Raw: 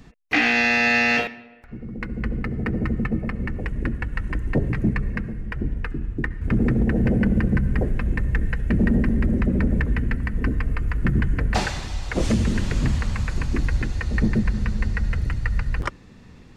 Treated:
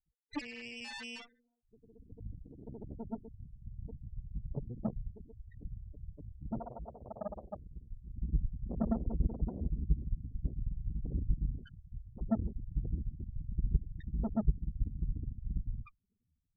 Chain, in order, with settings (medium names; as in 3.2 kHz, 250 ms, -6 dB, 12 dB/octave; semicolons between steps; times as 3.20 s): loudest bins only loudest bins 2; Chebyshev shaper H 3 -10 dB, 8 -27 dB, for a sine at -14.5 dBFS; 6.60–8.13 s: resonant low shelf 440 Hz -12.5 dB, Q 1.5; trim -2.5 dB